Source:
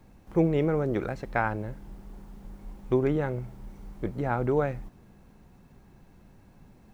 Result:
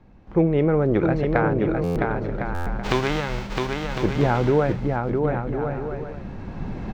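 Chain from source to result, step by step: 2.83–3.66 s: formants flattened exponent 0.3; recorder AGC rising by 8.3 dB/s; in parallel at -9 dB: hard clipper -14 dBFS, distortion -21 dB; on the sum: distance through air 190 m; on a send: bouncing-ball echo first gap 660 ms, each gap 0.6×, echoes 5; on the sum: buffer glitch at 1.83/2.54 s, samples 512, times 10

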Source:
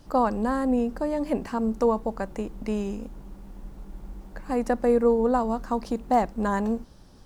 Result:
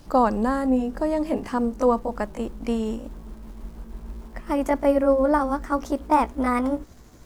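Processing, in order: pitch bend over the whole clip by +4 st starting unshifted; crackle 280 per s -51 dBFS; trim +3.5 dB

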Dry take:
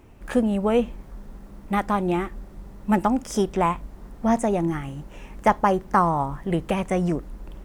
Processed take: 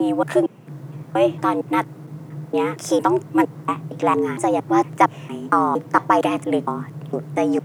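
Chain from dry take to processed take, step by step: slices played last to first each 230 ms, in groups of 3; frequency shift +110 Hz; trim +3.5 dB

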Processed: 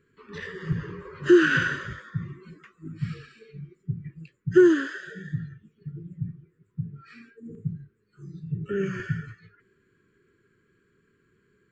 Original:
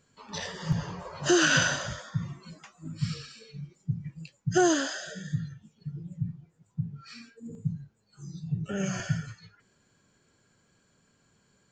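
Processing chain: FFT filter 260 Hz 0 dB, 400 Hz +11 dB, 730 Hz -29 dB, 1.1 kHz -2 dB, 1.8 kHz +4 dB, 6 kHz -19 dB, 9.1 kHz -10 dB

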